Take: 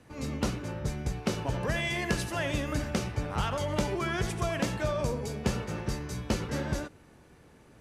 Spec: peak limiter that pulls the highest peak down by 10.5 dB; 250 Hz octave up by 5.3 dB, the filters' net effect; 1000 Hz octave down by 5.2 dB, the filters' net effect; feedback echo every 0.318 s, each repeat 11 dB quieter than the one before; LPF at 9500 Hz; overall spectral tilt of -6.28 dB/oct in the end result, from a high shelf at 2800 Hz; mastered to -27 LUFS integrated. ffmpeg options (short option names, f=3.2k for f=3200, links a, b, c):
-af "lowpass=9.5k,equalizer=f=250:t=o:g=7.5,equalizer=f=1k:t=o:g=-7,highshelf=f=2.8k:g=-4.5,alimiter=limit=-22.5dB:level=0:latency=1,aecho=1:1:318|636|954:0.282|0.0789|0.0221,volume=5.5dB"